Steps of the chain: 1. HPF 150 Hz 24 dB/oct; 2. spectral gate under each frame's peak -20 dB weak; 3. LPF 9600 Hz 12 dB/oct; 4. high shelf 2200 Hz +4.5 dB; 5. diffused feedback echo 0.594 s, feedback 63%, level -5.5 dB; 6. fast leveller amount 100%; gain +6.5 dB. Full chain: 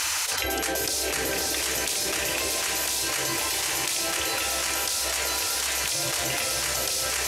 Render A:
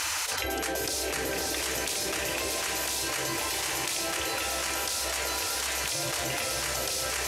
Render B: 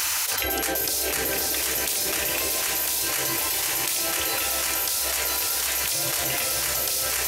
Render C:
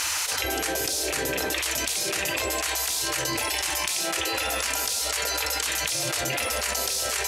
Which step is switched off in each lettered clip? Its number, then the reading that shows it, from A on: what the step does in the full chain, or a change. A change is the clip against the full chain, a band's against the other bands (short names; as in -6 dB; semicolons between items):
4, 8 kHz band -3.0 dB; 3, loudness change +2.0 LU; 5, 8 kHz band -2.0 dB